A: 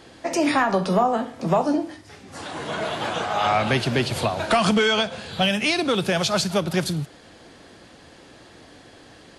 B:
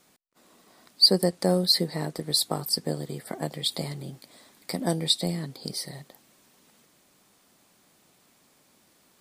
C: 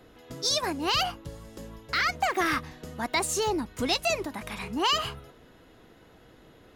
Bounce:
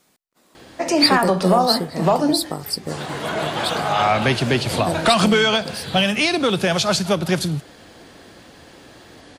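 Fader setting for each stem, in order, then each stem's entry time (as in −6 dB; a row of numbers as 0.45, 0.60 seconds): +3.0, +1.0, −16.0 decibels; 0.55, 0.00, 1.15 seconds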